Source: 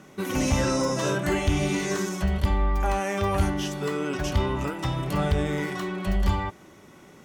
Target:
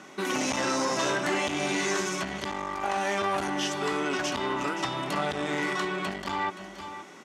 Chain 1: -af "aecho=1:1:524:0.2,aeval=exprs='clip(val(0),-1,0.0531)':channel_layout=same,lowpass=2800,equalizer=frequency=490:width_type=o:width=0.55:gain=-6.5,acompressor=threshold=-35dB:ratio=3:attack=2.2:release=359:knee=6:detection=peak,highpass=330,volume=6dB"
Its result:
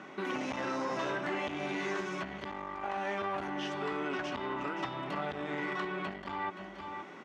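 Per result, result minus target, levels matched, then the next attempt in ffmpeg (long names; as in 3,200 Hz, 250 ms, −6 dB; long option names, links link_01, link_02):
8,000 Hz band −13.0 dB; downward compressor: peak gain reduction +7.5 dB
-af "aecho=1:1:524:0.2,aeval=exprs='clip(val(0),-1,0.0531)':channel_layout=same,lowpass=8000,equalizer=frequency=490:width_type=o:width=0.55:gain=-6.5,acompressor=threshold=-35dB:ratio=3:attack=2.2:release=359:knee=6:detection=peak,highpass=330,volume=6dB"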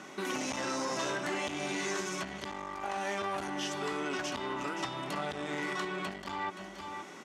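downward compressor: peak gain reduction +7.5 dB
-af "aecho=1:1:524:0.2,aeval=exprs='clip(val(0),-1,0.0531)':channel_layout=same,lowpass=8000,equalizer=frequency=490:width_type=o:width=0.55:gain=-6.5,acompressor=threshold=-24dB:ratio=3:attack=2.2:release=359:knee=6:detection=peak,highpass=330,volume=6dB"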